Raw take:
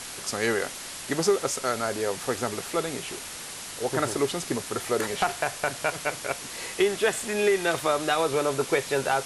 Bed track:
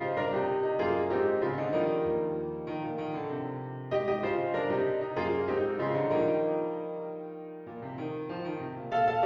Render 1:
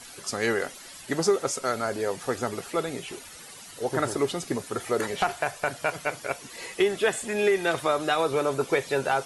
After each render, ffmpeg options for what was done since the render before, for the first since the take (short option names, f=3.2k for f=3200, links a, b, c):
-af "afftdn=nr=12:nf=-39"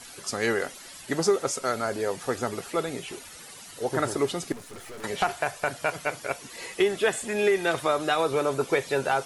-filter_complex "[0:a]asettb=1/sr,asplit=3[a][b][c];[a]atrim=end=4.524[d];[b]atrim=start=4.52:end=5.04,asetpts=PTS-STARTPTS,afade=t=in:d=0.004:c=qsin,afade=t=out:st=0.516:d=0.004:c=qsin,aeval=exprs='(tanh(100*val(0)+0.65)-tanh(0.65))/100':c=same[e];[c]atrim=start=5.036[f];[d][e]acrossfade=d=0.004:c1=hsin:c2=qsin[g];[g][f]acrossfade=d=0.004:c1=qsin:c2=hsin"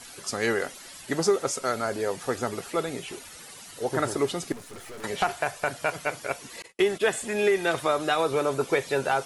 -filter_complex "[0:a]asettb=1/sr,asplit=3[a][b][c];[a]atrim=end=6.624[d];[b]atrim=start=6.62:end=7.15,asetpts=PTS-STARTPTS,afade=t=in:d=0.004:c=qsin,afade=t=out:st=0.526:d=0.004:c=qsin,agate=range=-41dB:threshold=-37dB:ratio=16:release=100:detection=peak[e];[c]atrim=start=7.146[f];[d][e]acrossfade=d=0.004:c1=hsin:c2=qsin[g];[g][f]acrossfade=d=0.004:c1=qsin:c2=hsin"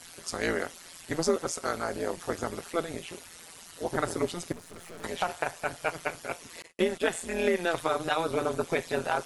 -af "tremolo=f=170:d=0.889"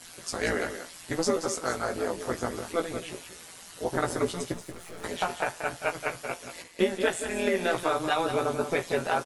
-filter_complex "[0:a]asplit=2[a][b];[b]adelay=16,volume=-5dB[c];[a][c]amix=inputs=2:normalize=0,asplit=2[d][e];[e]aecho=0:1:181:0.335[f];[d][f]amix=inputs=2:normalize=0"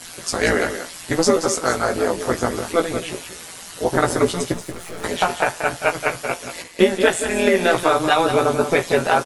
-af "volume=10dB"